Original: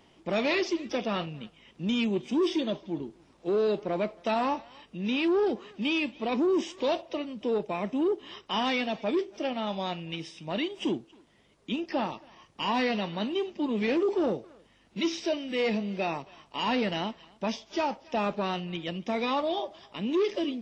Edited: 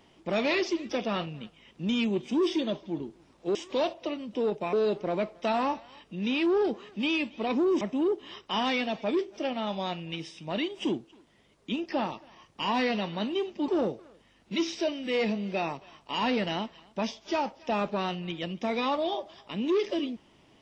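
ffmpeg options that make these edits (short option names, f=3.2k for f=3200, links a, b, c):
-filter_complex "[0:a]asplit=5[a][b][c][d][e];[a]atrim=end=3.552[f];[b]atrim=start=6.628:end=7.812[g];[c]atrim=start=3.548:end=6.632[h];[d]atrim=start=7.808:end=13.682[i];[e]atrim=start=14.128[j];[f][g]acrossfade=d=0.004:c1=hsin:c2=hsin[k];[k][h]acrossfade=d=0.004:c1=hsin:c2=hsin[l];[l][i]acrossfade=d=0.004:c1=hsin:c2=hsin[m];[m][j]acrossfade=d=0.004:c1=hsin:c2=hsin"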